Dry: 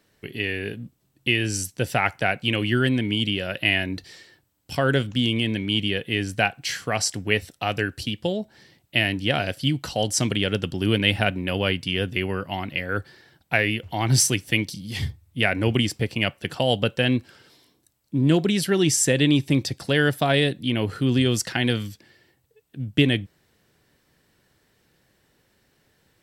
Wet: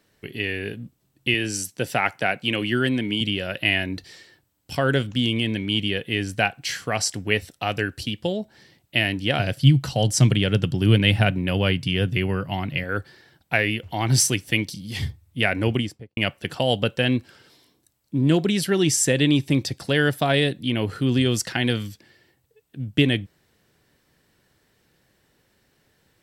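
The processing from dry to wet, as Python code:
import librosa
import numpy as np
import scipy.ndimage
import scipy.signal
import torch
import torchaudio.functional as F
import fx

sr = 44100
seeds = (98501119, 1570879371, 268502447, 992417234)

y = fx.highpass(x, sr, hz=140.0, slope=12, at=(1.34, 3.21))
y = fx.peak_eq(y, sr, hz=130.0, db=12.5, octaves=0.77, at=(9.39, 12.84))
y = fx.studio_fade_out(y, sr, start_s=15.63, length_s=0.54)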